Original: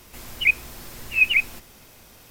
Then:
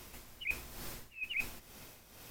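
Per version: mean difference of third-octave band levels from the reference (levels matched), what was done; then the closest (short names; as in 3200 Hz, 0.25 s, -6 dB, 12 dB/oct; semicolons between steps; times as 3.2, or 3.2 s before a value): 9.0 dB: reverse; compressor 20:1, threshold -31 dBFS, peak gain reduction 20 dB; reverse; tremolo 2.2 Hz, depth 61%; gain -2.5 dB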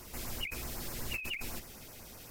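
13.5 dB: negative-ratio compressor -28 dBFS, ratio -1; LFO notch sine 8 Hz 920–3600 Hz; gain -6.5 dB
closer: first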